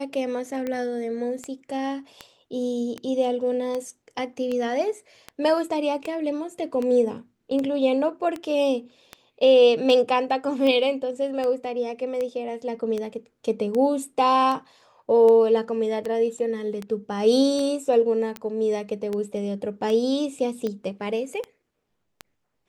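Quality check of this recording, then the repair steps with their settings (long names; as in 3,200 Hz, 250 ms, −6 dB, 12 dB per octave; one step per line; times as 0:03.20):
scratch tick 78 rpm −17 dBFS
0:18.37: click −21 dBFS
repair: click removal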